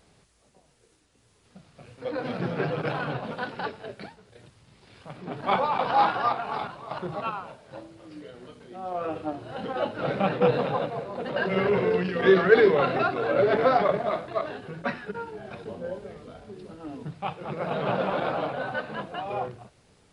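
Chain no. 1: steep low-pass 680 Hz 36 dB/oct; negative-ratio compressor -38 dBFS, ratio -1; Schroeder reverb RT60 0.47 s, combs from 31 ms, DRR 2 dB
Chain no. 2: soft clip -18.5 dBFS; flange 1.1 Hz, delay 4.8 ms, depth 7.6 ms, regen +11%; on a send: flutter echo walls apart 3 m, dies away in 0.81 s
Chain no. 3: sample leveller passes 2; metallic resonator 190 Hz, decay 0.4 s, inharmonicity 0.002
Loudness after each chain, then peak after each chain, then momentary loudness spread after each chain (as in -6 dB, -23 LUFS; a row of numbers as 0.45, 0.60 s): -35.0, -27.0, -31.0 LUFS; -18.5, -8.5, -9.5 dBFS; 11, 20, 19 LU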